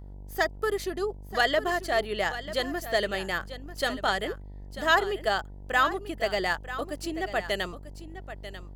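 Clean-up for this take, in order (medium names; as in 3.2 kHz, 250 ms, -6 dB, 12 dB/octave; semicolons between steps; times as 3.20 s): de-hum 48.9 Hz, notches 20; inverse comb 942 ms -13 dB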